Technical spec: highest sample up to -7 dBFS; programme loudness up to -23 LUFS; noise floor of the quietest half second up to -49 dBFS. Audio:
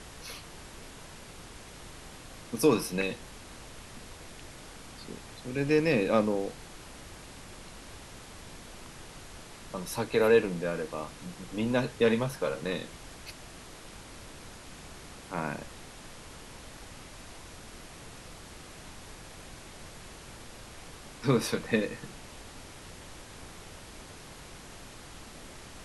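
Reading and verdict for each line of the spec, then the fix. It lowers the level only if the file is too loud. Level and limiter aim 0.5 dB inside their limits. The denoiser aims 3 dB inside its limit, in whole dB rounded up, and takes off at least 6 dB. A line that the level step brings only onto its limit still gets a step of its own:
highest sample -11.0 dBFS: pass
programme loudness -30.0 LUFS: pass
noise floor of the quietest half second -47 dBFS: fail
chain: noise reduction 6 dB, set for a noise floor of -47 dBFS

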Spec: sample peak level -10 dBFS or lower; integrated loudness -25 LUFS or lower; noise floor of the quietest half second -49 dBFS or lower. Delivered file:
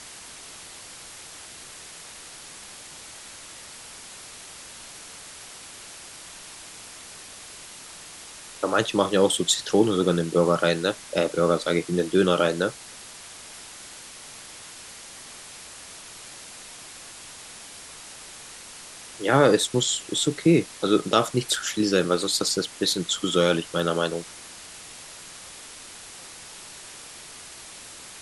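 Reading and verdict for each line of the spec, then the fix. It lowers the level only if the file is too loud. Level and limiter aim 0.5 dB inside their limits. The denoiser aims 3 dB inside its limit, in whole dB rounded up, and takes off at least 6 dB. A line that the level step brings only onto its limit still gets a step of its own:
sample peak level -5.0 dBFS: fail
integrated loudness -23.0 LUFS: fail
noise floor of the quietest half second -43 dBFS: fail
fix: noise reduction 7 dB, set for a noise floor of -43 dBFS; trim -2.5 dB; peak limiter -10.5 dBFS

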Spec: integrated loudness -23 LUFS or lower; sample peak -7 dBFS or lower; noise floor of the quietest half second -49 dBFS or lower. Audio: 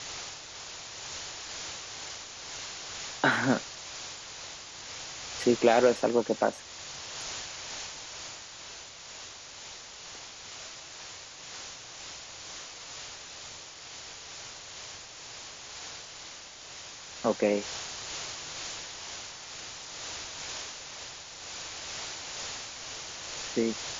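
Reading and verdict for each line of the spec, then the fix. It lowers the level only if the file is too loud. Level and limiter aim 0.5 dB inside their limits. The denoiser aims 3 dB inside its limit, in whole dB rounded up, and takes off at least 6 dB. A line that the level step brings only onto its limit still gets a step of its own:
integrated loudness -34.5 LUFS: pass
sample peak -9.0 dBFS: pass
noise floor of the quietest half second -46 dBFS: fail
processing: noise reduction 6 dB, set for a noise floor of -46 dBFS

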